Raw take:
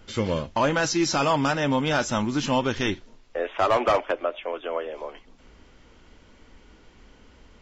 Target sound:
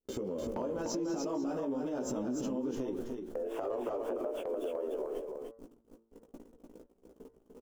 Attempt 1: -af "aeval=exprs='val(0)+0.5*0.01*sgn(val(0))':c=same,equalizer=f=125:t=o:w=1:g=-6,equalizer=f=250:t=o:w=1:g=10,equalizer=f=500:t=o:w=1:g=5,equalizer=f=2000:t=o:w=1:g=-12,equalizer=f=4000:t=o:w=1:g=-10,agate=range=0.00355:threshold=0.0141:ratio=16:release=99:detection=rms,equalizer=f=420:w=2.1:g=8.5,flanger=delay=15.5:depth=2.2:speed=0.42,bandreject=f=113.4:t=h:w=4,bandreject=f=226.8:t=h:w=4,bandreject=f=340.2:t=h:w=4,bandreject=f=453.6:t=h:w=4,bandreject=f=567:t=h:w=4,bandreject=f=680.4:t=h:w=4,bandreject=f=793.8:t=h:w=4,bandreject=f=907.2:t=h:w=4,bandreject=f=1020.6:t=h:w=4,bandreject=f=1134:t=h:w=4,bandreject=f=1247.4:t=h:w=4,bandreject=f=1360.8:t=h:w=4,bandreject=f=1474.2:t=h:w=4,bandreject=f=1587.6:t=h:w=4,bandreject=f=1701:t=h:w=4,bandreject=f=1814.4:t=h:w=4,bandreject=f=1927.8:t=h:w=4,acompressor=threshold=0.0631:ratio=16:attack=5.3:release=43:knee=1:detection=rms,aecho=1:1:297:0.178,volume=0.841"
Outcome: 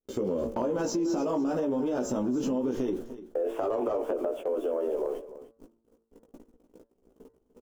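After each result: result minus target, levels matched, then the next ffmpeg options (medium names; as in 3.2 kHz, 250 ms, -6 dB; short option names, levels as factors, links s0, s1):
compression: peak gain reduction -8 dB; echo-to-direct -10.5 dB
-af "aeval=exprs='val(0)+0.5*0.01*sgn(val(0))':c=same,equalizer=f=125:t=o:w=1:g=-6,equalizer=f=250:t=o:w=1:g=10,equalizer=f=500:t=o:w=1:g=5,equalizer=f=2000:t=o:w=1:g=-12,equalizer=f=4000:t=o:w=1:g=-10,agate=range=0.00355:threshold=0.0141:ratio=16:release=99:detection=rms,equalizer=f=420:w=2.1:g=8.5,flanger=delay=15.5:depth=2.2:speed=0.42,bandreject=f=113.4:t=h:w=4,bandreject=f=226.8:t=h:w=4,bandreject=f=340.2:t=h:w=4,bandreject=f=453.6:t=h:w=4,bandreject=f=567:t=h:w=4,bandreject=f=680.4:t=h:w=4,bandreject=f=793.8:t=h:w=4,bandreject=f=907.2:t=h:w=4,bandreject=f=1020.6:t=h:w=4,bandreject=f=1134:t=h:w=4,bandreject=f=1247.4:t=h:w=4,bandreject=f=1360.8:t=h:w=4,bandreject=f=1474.2:t=h:w=4,bandreject=f=1587.6:t=h:w=4,bandreject=f=1701:t=h:w=4,bandreject=f=1814.4:t=h:w=4,bandreject=f=1927.8:t=h:w=4,acompressor=threshold=0.0237:ratio=16:attack=5.3:release=43:knee=1:detection=rms,aecho=1:1:297:0.178,volume=0.841"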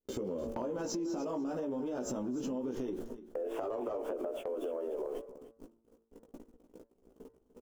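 echo-to-direct -10.5 dB
-af "aeval=exprs='val(0)+0.5*0.01*sgn(val(0))':c=same,equalizer=f=125:t=o:w=1:g=-6,equalizer=f=250:t=o:w=1:g=10,equalizer=f=500:t=o:w=1:g=5,equalizer=f=2000:t=o:w=1:g=-12,equalizer=f=4000:t=o:w=1:g=-10,agate=range=0.00355:threshold=0.0141:ratio=16:release=99:detection=rms,equalizer=f=420:w=2.1:g=8.5,flanger=delay=15.5:depth=2.2:speed=0.42,bandreject=f=113.4:t=h:w=4,bandreject=f=226.8:t=h:w=4,bandreject=f=340.2:t=h:w=4,bandreject=f=453.6:t=h:w=4,bandreject=f=567:t=h:w=4,bandreject=f=680.4:t=h:w=4,bandreject=f=793.8:t=h:w=4,bandreject=f=907.2:t=h:w=4,bandreject=f=1020.6:t=h:w=4,bandreject=f=1134:t=h:w=4,bandreject=f=1247.4:t=h:w=4,bandreject=f=1360.8:t=h:w=4,bandreject=f=1474.2:t=h:w=4,bandreject=f=1587.6:t=h:w=4,bandreject=f=1701:t=h:w=4,bandreject=f=1814.4:t=h:w=4,bandreject=f=1927.8:t=h:w=4,acompressor=threshold=0.0237:ratio=16:attack=5.3:release=43:knee=1:detection=rms,aecho=1:1:297:0.596,volume=0.841"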